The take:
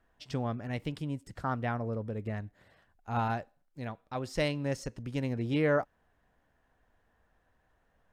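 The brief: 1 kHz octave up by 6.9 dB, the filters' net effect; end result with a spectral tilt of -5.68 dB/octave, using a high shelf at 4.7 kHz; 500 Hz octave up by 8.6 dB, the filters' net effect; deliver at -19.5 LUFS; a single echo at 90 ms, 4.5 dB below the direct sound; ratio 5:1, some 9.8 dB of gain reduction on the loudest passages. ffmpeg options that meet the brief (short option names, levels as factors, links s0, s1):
-af "equalizer=f=500:t=o:g=8.5,equalizer=f=1000:t=o:g=5.5,highshelf=f=4700:g=8,acompressor=threshold=0.0447:ratio=5,aecho=1:1:90:0.596,volume=4.47"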